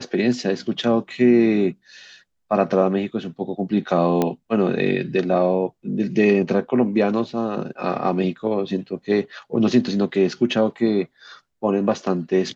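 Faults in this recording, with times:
0:04.22: click −7 dBFS

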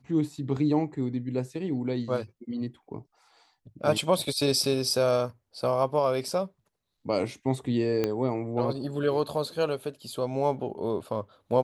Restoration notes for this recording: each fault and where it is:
0:08.04: click −13 dBFS

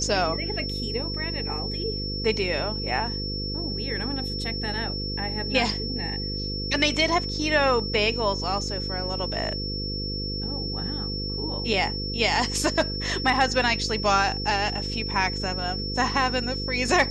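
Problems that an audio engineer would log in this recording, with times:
mains buzz 50 Hz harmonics 10 −32 dBFS
whistle 5,400 Hz −31 dBFS

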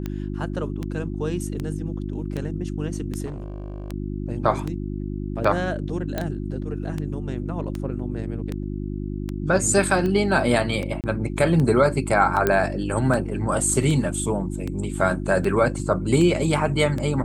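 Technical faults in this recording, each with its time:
mains hum 50 Hz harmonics 7 −29 dBFS
scratch tick 78 rpm −16 dBFS
0:03.25–0:03.92: clipping −28.5 dBFS
0:06.18: click −12 dBFS
0:11.01–0:11.04: drop-out 28 ms
0:12.47: click −7 dBFS

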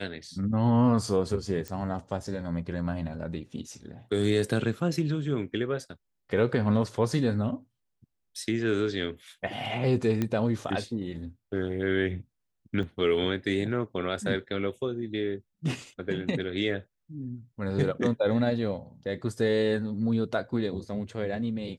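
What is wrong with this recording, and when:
0:01.68: click −20 dBFS
0:10.22: click −15 dBFS
0:12.83: drop-out 3.2 ms

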